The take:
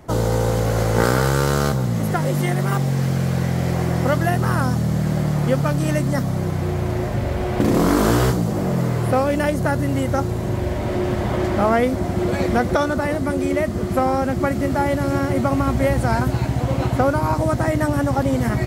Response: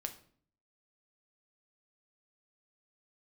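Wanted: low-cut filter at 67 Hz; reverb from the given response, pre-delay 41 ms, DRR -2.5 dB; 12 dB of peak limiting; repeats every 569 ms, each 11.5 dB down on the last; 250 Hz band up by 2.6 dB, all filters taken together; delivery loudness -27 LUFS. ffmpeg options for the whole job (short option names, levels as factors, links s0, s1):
-filter_complex "[0:a]highpass=67,equalizer=f=250:t=o:g=3.5,alimiter=limit=0.188:level=0:latency=1,aecho=1:1:569|1138|1707:0.266|0.0718|0.0194,asplit=2[s0][s1];[1:a]atrim=start_sample=2205,adelay=41[s2];[s1][s2]afir=irnorm=-1:irlink=0,volume=1.58[s3];[s0][s3]amix=inputs=2:normalize=0,volume=0.355"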